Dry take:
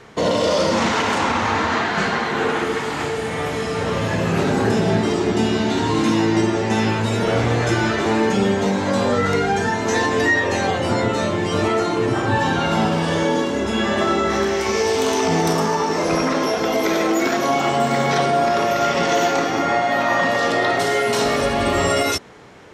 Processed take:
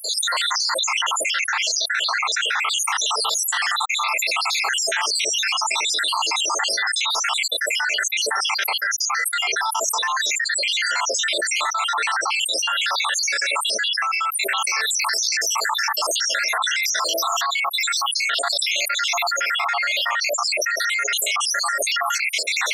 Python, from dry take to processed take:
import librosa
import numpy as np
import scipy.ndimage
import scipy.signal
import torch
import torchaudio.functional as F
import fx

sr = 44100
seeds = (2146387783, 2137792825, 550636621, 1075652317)

y = fx.spec_dropout(x, sr, seeds[0], share_pct=76)
y = scipy.signal.sosfilt(scipy.signal.butter(4, 1100.0, 'highpass', fs=sr, output='sos'), y)
y = fx.env_flatten(y, sr, amount_pct=100)